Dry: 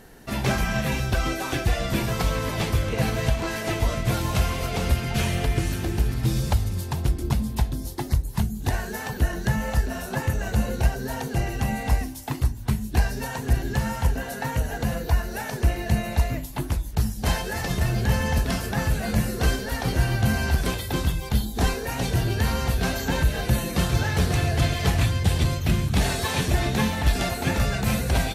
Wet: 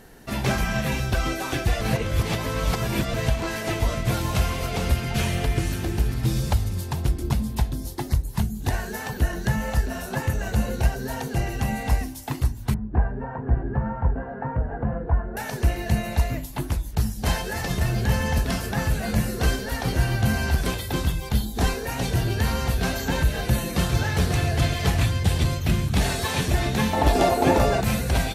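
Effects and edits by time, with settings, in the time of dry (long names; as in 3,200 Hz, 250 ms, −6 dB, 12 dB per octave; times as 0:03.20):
0:01.81–0:03.14: reverse
0:12.74–0:15.37: low-pass filter 1,400 Hz 24 dB per octave
0:26.93–0:27.81: flat-topped bell 540 Hz +11 dB 2.3 octaves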